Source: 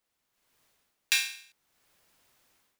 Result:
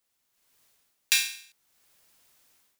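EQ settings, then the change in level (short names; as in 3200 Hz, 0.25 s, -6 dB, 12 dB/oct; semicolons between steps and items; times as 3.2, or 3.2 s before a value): high shelf 3700 Hz +8 dB; -1.5 dB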